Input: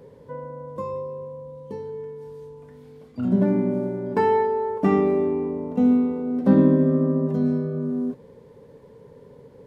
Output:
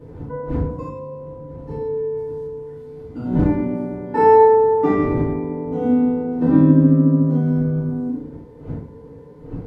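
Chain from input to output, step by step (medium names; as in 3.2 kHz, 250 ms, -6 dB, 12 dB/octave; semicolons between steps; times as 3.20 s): spectrogram pixelated in time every 100 ms; wind noise 210 Hz -37 dBFS; FDN reverb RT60 0.47 s, low-frequency decay 1.35×, high-frequency decay 0.45×, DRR -8 dB; trim -5.5 dB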